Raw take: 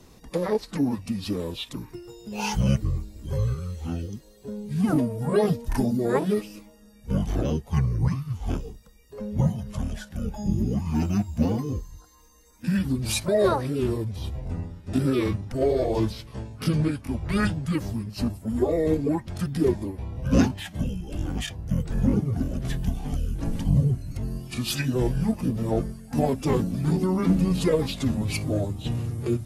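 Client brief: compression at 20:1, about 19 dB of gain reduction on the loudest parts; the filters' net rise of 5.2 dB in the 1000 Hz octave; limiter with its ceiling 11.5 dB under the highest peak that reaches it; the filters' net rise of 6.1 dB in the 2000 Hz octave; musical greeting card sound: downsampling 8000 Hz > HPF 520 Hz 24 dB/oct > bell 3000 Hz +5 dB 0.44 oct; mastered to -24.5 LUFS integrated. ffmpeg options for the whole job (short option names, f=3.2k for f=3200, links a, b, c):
-af "equalizer=f=1k:t=o:g=5.5,equalizer=f=2k:t=o:g=5,acompressor=threshold=-34dB:ratio=20,alimiter=level_in=10.5dB:limit=-24dB:level=0:latency=1,volume=-10.5dB,aresample=8000,aresample=44100,highpass=f=520:w=0.5412,highpass=f=520:w=1.3066,equalizer=f=3k:t=o:w=0.44:g=5,volume=26dB"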